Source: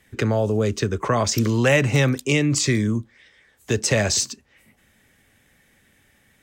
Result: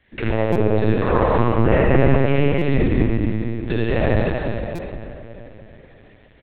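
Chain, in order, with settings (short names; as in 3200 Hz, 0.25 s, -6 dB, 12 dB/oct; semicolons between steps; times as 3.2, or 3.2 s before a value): treble ducked by the level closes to 1400 Hz, closed at -16 dBFS; hard clip -11 dBFS, distortion -28 dB; echo 79 ms -4.5 dB; reverb RT60 3.4 s, pre-delay 36 ms, DRR -5.5 dB; LPC vocoder at 8 kHz pitch kept; stuck buffer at 0.52/2.58/4.75, samples 256, times 5; gain -2.5 dB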